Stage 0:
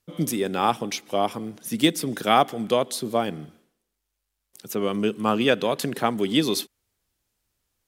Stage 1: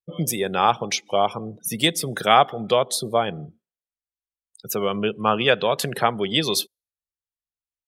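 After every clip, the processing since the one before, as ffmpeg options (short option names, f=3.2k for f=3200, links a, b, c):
-filter_complex "[0:a]asplit=2[a][b];[b]acompressor=threshold=-30dB:ratio=6,volume=-2dB[c];[a][c]amix=inputs=2:normalize=0,afftdn=nr=34:nf=-38,equalizer=f=270:t=o:w=0.76:g=-13.5,volume=3dB"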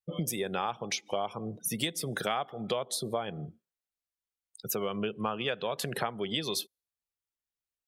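-af "acompressor=threshold=-28dB:ratio=5,volume=-1.5dB"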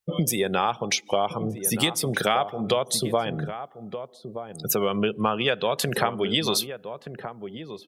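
-filter_complex "[0:a]asplit=2[a][b];[b]adelay=1224,volume=-10dB,highshelf=f=4k:g=-27.6[c];[a][c]amix=inputs=2:normalize=0,volume=8.5dB"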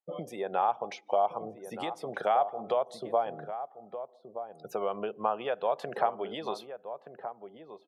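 -af "bandpass=f=740:t=q:w=2.2:csg=0"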